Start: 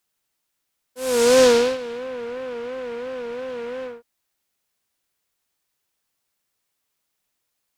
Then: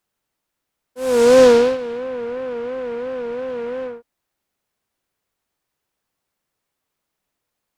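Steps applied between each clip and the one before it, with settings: treble shelf 2 kHz -10 dB; trim +5 dB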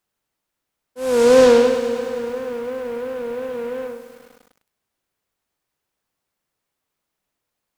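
bit-crushed delay 102 ms, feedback 80%, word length 7-bit, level -12 dB; trim -1 dB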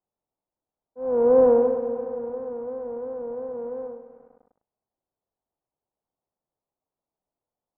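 four-pole ladder low-pass 990 Hz, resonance 35%

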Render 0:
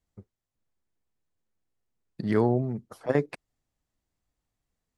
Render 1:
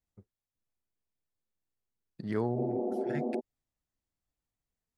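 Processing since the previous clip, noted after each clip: spectral replace 2.58–3.37 s, 210–1300 Hz before; trim -8 dB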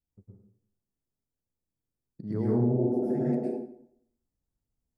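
FFT filter 300 Hz 0 dB, 3.2 kHz -21 dB, 5.3 kHz -10 dB; plate-style reverb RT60 0.67 s, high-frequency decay 0.8×, pre-delay 95 ms, DRR -6 dB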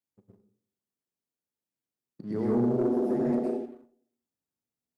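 Bessel high-pass 250 Hz, order 2; waveshaping leveller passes 1; Schroeder reverb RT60 0.32 s, combs from 26 ms, DRR 12 dB

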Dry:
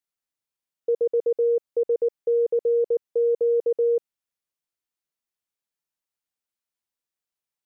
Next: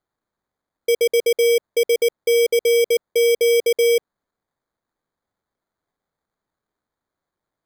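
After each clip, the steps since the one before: sample-and-hold 16×; trim +5 dB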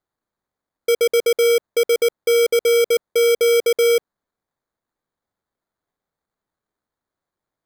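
waveshaping leveller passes 1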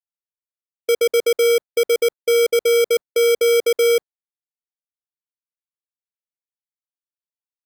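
gate -21 dBFS, range -39 dB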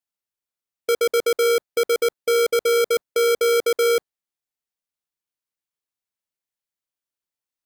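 saturation -21 dBFS, distortion -13 dB; trim +4.5 dB

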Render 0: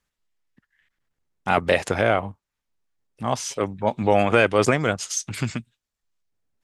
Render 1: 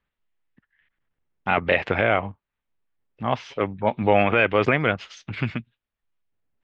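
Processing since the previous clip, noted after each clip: low-pass 3.3 kHz 24 dB/octave; dynamic bell 2.3 kHz, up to +6 dB, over -38 dBFS, Q 1.3; peak limiter -6 dBFS, peak gain reduction 5.5 dB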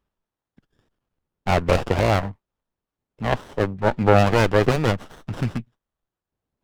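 sliding maximum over 17 samples; trim +3.5 dB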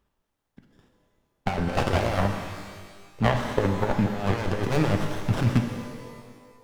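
compressor with a negative ratio -23 dBFS, ratio -0.5; pitch-shifted reverb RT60 1.6 s, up +12 st, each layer -8 dB, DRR 4.5 dB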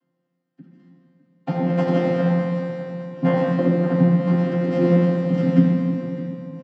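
vocoder on a held chord bare fifth, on F3; feedback delay 606 ms, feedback 45%, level -15 dB; reverberation RT60 1.7 s, pre-delay 3 ms, DRR -5.5 dB

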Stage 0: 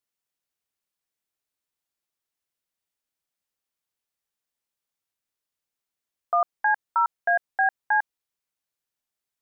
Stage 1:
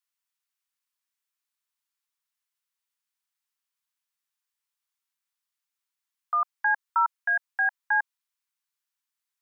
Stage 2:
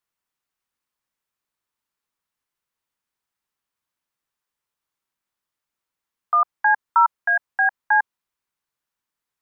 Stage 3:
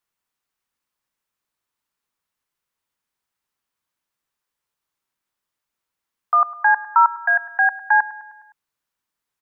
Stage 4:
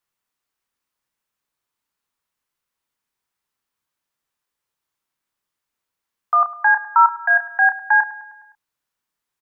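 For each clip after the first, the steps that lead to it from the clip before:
steep high-pass 890 Hz 48 dB/octave
tilt shelf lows +7 dB, about 1.4 kHz; trim +6 dB
feedback delay 103 ms, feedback 59%, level -18.5 dB; trim +2 dB
doubling 30 ms -9 dB

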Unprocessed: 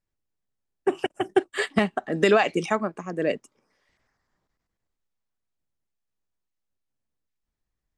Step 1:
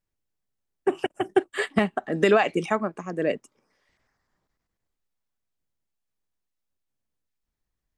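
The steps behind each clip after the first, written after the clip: dynamic bell 5.2 kHz, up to -6 dB, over -46 dBFS, Q 1.1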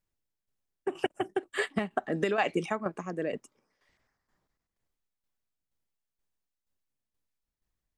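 compression 2:1, threshold -21 dBFS, peak gain reduction 5 dB; tremolo saw down 2.1 Hz, depth 65%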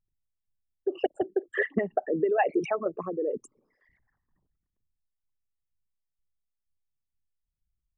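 resonances exaggerated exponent 3; trim +3.5 dB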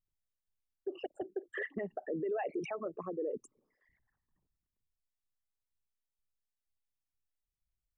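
peak limiter -22 dBFS, peak gain reduction 9.5 dB; trim -6.5 dB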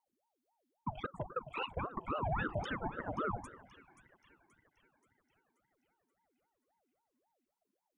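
two-band feedback delay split 770 Hz, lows 102 ms, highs 529 ms, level -13 dB; ring modulator with a swept carrier 590 Hz, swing 60%, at 3.7 Hz; trim +2.5 dB

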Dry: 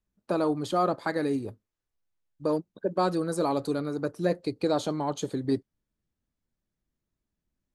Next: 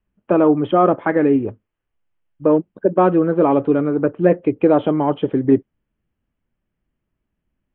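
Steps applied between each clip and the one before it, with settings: steep low-pass 3.2 kHz 96 dB/octave; dynamic bell 340 Hz, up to +5 dB, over -35 dBFS, Q 0.75; trim +8.5 dB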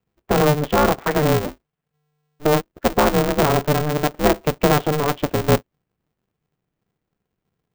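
polarity switched at an audio rate 150 Hz; trim -2.5 dB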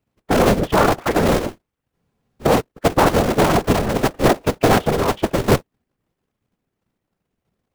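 whisper effect; trim +1.5 dB

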